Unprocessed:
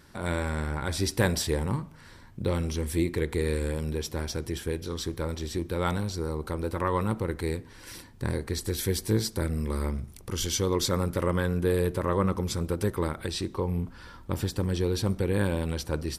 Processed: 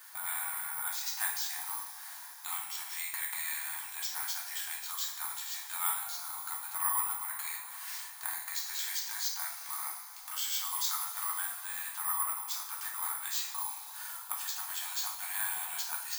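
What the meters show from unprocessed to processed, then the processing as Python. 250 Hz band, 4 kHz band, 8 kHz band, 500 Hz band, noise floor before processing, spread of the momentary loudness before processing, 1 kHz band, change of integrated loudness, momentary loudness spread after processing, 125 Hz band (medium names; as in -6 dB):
under -40 dB, -3.0 dB, +2.5 dB, under -35 dB, -50 dBFS, 7 LU, -4.5 dB, -4.5 dB, 7 LU, under -40 dB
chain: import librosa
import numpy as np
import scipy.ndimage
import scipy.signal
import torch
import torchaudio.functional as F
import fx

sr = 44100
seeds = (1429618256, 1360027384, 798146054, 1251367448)

y = fx.brickwall_bandpass(x, sr, low_hz=690.0, high_hz=5600.0)
y = (np.kron(y[::4], np.eye(4)[0]) * 4)[:len(y)]
y = fx.rider(y, sr, range_db=3, speed_s=2.0)
y = fx.rev_double_slope(y, sr, seeds[0], early_s=0.5, late_s=3.8, knee_db=-18, drr_db=-3.0)
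y = fx.band_squash(y, sr, depth_pct=40)
y = F.gain(torch.from_numpy(y), -8.5).numpy()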